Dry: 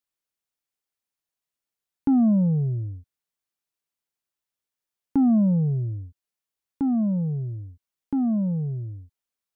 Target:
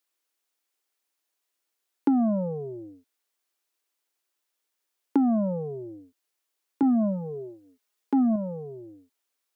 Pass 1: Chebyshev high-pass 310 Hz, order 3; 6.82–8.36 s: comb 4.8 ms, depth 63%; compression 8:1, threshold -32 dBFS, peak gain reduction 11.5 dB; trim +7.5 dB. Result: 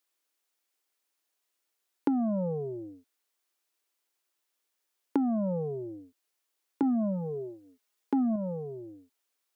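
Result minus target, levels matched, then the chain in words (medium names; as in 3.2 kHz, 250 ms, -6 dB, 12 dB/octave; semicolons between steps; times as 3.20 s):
compression: peak gain reduction +5.5 dB
Chebyshev high-pass 310 Hz, order 3; 6.82–8.36 s: comb 4.8 ms, depth 63%; compression 8:1, threshold -25.5 dBFS, peak gain reduction 5.5 dB; trim +7.5 dB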